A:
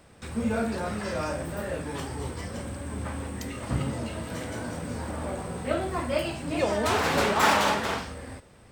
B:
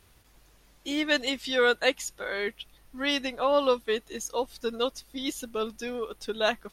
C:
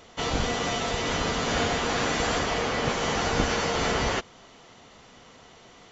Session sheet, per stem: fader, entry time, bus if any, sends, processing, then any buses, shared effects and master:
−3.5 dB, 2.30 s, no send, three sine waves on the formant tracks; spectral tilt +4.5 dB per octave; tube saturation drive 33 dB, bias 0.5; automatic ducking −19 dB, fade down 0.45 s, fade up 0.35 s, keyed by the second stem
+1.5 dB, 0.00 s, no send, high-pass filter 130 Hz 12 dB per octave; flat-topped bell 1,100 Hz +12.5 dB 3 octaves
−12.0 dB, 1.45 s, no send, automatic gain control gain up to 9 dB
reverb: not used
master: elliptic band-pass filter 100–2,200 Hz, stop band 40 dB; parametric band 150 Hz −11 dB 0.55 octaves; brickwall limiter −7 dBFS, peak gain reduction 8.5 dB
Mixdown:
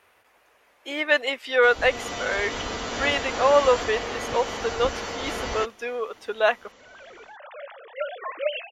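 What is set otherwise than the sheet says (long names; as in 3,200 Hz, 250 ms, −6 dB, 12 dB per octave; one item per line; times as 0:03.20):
stem A: missing tube saturation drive 33 dB, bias 0.5
stem B +1.5 dB → −6.0 dB
master: missing elliptic band-pass filter 100–2,200 Hz, stop band 40 dB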